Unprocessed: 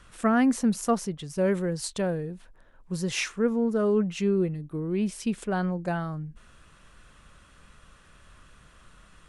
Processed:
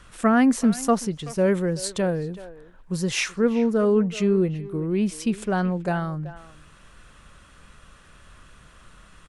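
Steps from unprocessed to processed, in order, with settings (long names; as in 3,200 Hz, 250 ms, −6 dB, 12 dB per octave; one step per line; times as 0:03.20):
far-end echo of a speakerphone 380 ms, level −15 dB
level +4 dB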